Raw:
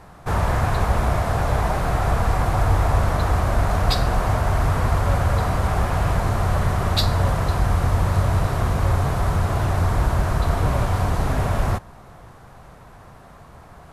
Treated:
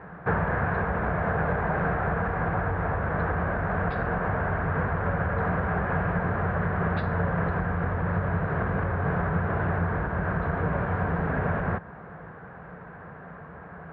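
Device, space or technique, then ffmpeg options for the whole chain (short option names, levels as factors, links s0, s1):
bass amplifier: -af "acompressor=threshold=0.0794:ratio=6,highpass=79,equalizer=f=120:t=q:w=4:g=-5,equalizer=f=170:t=q:w=4:g=10,equalizer=f=460:t=q:w=4:g=7,equalizer=f=1600:t=q:w=4:g=10,lowpass=f=2200:w=0.5412,lowpass=f=2200:w=1.3066"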